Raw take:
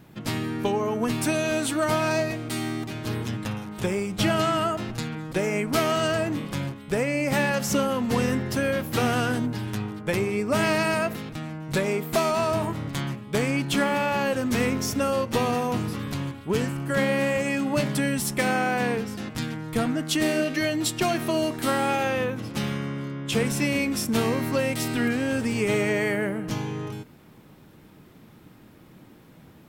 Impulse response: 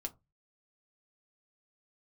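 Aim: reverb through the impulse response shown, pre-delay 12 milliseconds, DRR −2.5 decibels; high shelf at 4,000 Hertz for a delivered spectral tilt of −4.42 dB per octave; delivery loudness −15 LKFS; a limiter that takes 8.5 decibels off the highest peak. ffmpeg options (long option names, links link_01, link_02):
-filter_complex "[0:a]highshelf=frequency=4000:gain=6.5,alimiter=limit=-16.5dB:level=0:latency=1,asplit=2[link_01][link_02];[1:a]atrim=start_sample=2205,adelay=12[link_03];[link_02][link_03]afir=irnorm=-1:irlink=0,volume=4dB[link_04];[link_01][link_04]amix=inputs=2:normalize=0,volume=7dB"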